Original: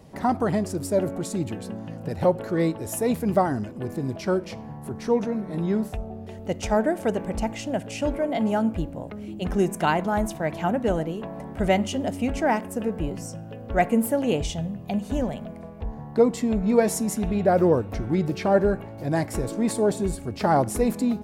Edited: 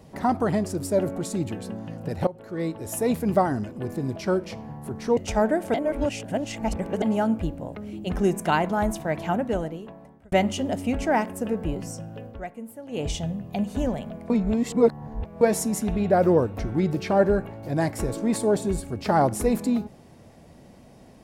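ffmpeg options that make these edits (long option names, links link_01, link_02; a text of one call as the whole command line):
ffmpeg -i in.wav -filter_complex "[0:a]asplit=10[link_01][link_02][link_03][link_04][link_05][link_06][link_07][link_08][link_09][link_10];[link_01]atrim=end=2.27,asetpts=PTS-STARTPTS,afade=type=out:start_time=2.266:duration=0.004:curve=hsin:silence=0.1[link_11];[link_02]atrim=start=2.27:end=5.172,asetpts=PTS-STARTPTS,afade=type=in:duration=0.75:silence=0.1[link_12];[link_03]atrim=start=6.518:end=7.092[link_13];[link_04]atrim=start=7.088:end=8.372,asetpts=PTS-STARTPTS,areverse[link_14];[link_05]atrim=start=8.368:end=11.67,asetpts=PTS-STARTPTS,afade=type=out:start_time=2.232:duration=1.07[link_15];[link_06]atrim=start=11.67:end=13.85,asetpts=PTS-STARTPTS,afade=type=in:duration=0.004:curve=hsin,afade=type=out:start_time=1.93:duration=0.25:curve=qua:silence=0.141254[link_16];[link_07]atrim=start=13.85:end=14.17,asetpts=PTS-STARTPTS,volume=-17dB[link_17];[link_08]atrim=start=14.17:end=15.652,asetpts=PTS-STARTPTS,afade=type=in:duration=0.25:curve=qua:silence=0.141254[link_18];[link_09]atrim=start=15.648:end=16.762,asetpts=PTS-STARTPTS,areverse[link_19];[link_10]atrim=start=16.758[link_20];[link_11][link_12]concat=n=2:v=0:a=1[link_21];[link_21][link_13]acrossfade=duration=0.004:curve1=hsin:curve2=hsin[link_22];[link_22][link_14]acrossfade=duration=0.004:curve1=hsin:curve2=hsin[link_23];[link_15][link_16][link_17][link_18]concat=n=4:v=0:a=1[link_24];[link_23][link_24]acrossfade=duration=0.004:curve1=hsin:curve2=hsin[link_25];[link_25][link_19]acrossfade=duration=0.004:curve1=hsin:curve2=hsin[link_26];[link_26][link_20]acrossfade=duration=0.004:curve1=hsin:curve2=hsin" out.wav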